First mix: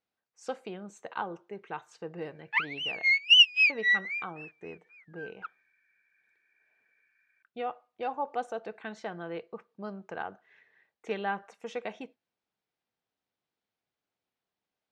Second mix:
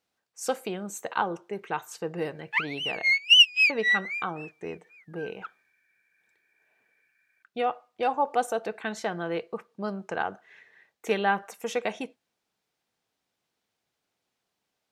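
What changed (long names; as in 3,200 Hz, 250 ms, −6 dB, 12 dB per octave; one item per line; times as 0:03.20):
speech +7.0 dB
master: remove high-frequency loss of the air 110 metres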